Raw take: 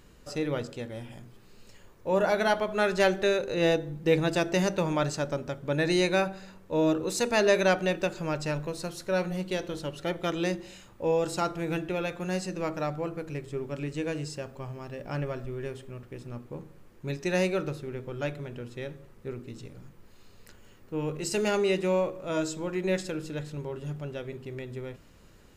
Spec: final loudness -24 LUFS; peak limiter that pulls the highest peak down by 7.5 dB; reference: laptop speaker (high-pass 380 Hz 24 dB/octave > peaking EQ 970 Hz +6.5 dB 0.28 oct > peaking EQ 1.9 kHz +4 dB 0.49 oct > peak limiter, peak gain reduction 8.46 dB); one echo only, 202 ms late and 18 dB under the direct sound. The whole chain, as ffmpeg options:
-af "alimiter=limit=0.119:level=0:latency=1,highpass=f=380:w=0.5412,highpass=f=380:w=1.3066,equalizer=f=970:t=o:w=0.28:g=6.5,equalizer=f=1900:t=o:w=0.49:g=4,aecho=1:1:202:0.126,volume=3.55,alimiter=limit=0.266:level=0:latency=1"

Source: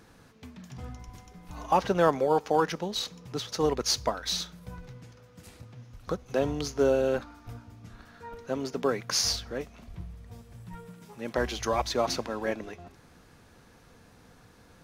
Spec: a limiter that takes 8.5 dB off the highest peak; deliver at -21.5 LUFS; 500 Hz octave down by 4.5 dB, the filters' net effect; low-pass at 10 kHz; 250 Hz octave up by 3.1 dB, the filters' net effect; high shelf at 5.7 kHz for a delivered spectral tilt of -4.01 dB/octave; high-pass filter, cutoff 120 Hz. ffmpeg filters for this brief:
-af "highpass=120,lowpass=10000,equalizer=f=250:t=o:g=6.5,equalizer=f=500:t=o:g=-7,highshelf=f=5700:g=-4.5,volume=3.76,alimiter=limit=0.355:level=0:latency=1"

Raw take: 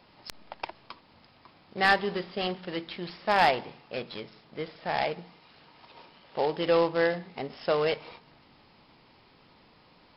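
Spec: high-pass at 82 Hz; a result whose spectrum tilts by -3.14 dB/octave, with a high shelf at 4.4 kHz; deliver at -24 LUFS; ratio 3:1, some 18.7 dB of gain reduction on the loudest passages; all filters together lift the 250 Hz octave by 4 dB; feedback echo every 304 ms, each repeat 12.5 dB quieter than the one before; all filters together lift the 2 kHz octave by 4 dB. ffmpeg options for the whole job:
-af "highpass=82,equalizer=f=250:t=o:g=6.5,equalizer=f=2000:t=o:g=6,highshelf=f=4400:g=-8,acompressor=threshold=0.00794:ratio=3,aecho=1:1:304|608|912:0.237|0.0569|0.0137,volume=8.91"

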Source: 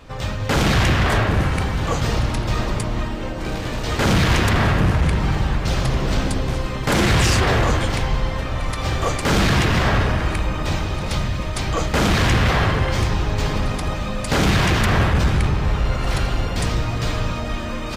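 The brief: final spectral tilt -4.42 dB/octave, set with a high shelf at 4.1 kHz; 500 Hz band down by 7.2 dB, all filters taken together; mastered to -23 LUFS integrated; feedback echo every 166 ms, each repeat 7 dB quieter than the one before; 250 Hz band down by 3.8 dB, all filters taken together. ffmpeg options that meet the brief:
-af "equalizer=f=250:t=o:g=-3.5,equalizer=f=500:t=o:g=-8.5,highshelf=f=4100:g=9,aecho=1:1:166|332|498|664|830:0.447|0.201|0.0905|0.0407|0.0183,volume=0.668"

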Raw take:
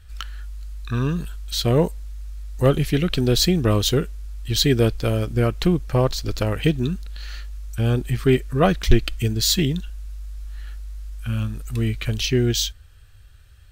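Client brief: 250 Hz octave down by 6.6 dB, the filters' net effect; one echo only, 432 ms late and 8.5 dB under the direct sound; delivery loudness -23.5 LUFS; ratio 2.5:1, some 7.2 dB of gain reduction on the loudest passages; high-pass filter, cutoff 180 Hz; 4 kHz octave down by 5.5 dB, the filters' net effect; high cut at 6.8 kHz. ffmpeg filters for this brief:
-af "highpass=180,lowpass=6800,equalizer=f=250:t=o:g=-7.5,equalizer=f=4000:t=o:g=-6,acompressor=threshold=0.0501:ratio=2.5,aecho=1:1:432:0.376,volume=2.37"

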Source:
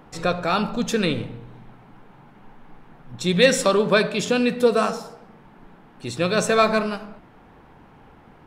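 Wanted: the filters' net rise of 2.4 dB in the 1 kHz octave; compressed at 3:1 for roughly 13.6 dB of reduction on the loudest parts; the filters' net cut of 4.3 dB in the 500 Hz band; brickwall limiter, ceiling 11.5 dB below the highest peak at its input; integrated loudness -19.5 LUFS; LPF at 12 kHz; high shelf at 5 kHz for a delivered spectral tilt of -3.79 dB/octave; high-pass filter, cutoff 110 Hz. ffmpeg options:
-af "highpass=110,lowpass=12000,equalizer=f=500:t=o:g=-6.5,equalizer=f=1000:t=o:g=4.5,highshelf=f=5000:g=7,acompressor=threshold=0.0282:ratio=3,volume=8.41,alimiter=limit=0.355:level=0:latency=1"

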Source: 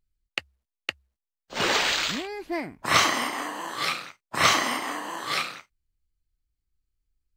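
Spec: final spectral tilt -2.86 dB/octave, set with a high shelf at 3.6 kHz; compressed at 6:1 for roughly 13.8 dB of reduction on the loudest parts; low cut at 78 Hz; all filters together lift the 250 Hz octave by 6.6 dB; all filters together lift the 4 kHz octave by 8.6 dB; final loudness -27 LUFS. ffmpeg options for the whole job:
-af "highpass=78,equalizer=f=250:t=o:g=8.5,highshelf=f=3600:g=6.5,equalizer=f=4000:t=o:g=6.5,acompressor=threshold=0.0562:ratio=6,volume=1.19"

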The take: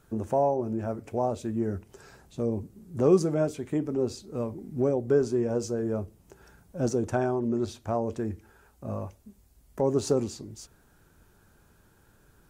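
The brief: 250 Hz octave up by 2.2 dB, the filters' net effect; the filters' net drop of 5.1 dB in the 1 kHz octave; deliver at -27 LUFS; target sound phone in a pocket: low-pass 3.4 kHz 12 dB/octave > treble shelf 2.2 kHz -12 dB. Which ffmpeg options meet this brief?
-af "lowpass=3400,equalizer=f=250:t=o:g=3.5,equalizer=f=1000:t=o:g=-6,highshelf=f=2200:g=-12,volume=1.19"

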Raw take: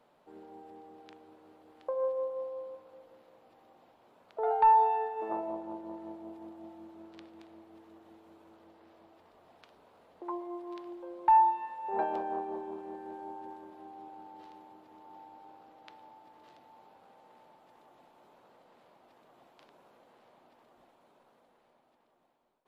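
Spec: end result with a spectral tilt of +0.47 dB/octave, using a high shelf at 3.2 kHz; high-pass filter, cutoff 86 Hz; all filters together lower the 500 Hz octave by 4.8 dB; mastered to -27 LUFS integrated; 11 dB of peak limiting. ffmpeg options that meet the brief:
-af "highpass=86,equalizer=f=500:t=o:g=-6,highshelf=f=3200:g=6.5,volume=4.22,alimiter=limit=0.188:level=0:latency=1"

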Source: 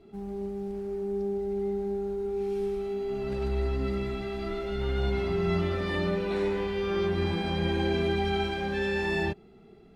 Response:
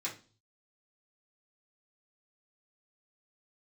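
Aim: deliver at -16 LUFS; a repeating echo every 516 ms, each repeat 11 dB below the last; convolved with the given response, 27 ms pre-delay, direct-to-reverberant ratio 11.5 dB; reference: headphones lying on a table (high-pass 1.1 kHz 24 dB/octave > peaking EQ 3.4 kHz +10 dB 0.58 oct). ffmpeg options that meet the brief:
-filter_complex "[0:a]aecho=1:1:516|1032|1548:0.282|0.0789|0.0221,asplit=2[s0][s1];[1:a]atrim=start_sample=2205,adelay=27[s2];[s1][s2]afir=irnorm=-1:irlink=0,volume=0.211[s3];[s0][s3]amix=inputs=2:normalize=0,highpass=f=1100:w=0.5412,highpass=f=1100:w=1.3066,equalizer=f=3400:t=o:w=0.58:g=10,volume=6.31"

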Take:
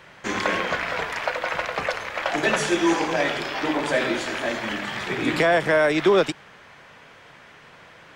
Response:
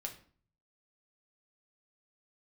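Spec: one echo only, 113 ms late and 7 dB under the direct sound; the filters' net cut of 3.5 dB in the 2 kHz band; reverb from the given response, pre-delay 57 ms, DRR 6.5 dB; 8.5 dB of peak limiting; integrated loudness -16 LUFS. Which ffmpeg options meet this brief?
-filter_complex "[0:a]equalizer=f=2000:t=o:g=-4.5,alimiter=limit=0.133:level=0:latency=1,aecho=1:1:113:0.447,asplit=2[s0][s1];[1:a]atrim=start_sample=2205,adelay=57[s2];[s1][s2]afir=irnorm=-1:irlink=0,volume=0.562[s3];[s0][s3]amix=inputs=2:normalize=0,volume=3.16"

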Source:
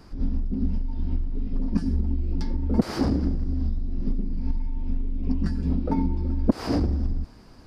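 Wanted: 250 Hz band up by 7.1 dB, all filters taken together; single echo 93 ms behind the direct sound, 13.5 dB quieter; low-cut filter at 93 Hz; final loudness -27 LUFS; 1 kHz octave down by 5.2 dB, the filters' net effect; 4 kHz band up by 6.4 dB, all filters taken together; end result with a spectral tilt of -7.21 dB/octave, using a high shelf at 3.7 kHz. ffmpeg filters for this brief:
-af "highpass=93,equalizer=f=250:t=o:g=8.5,equalizer=f=1000:t=o:g=-8,highshelf=f=3700:g=7,equalizer=f=4000:t=o:g=3,aecho=1:1:93:0.211,volume=0.668"

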